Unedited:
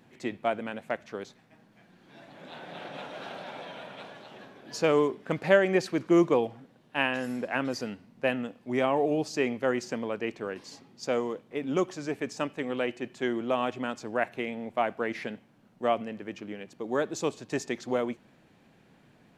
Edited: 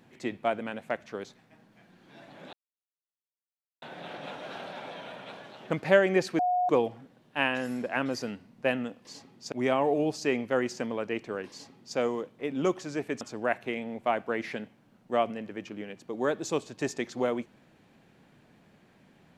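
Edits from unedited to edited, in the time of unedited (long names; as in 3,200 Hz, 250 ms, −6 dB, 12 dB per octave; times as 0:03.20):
0:02.53: splice in silence 1.29 s
0:04.41–0:05.29: remove
0:05.98–0:06.28: beep over 723 Hz −23 dBFS
0:10.62–0:11.09: duplicate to 0:08.64
0:12.33–0:13.92: remove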